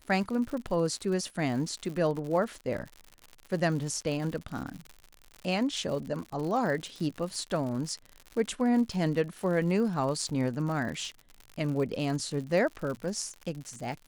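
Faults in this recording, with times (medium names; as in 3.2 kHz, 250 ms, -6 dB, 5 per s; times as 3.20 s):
crackle 99 per s -36 dBFS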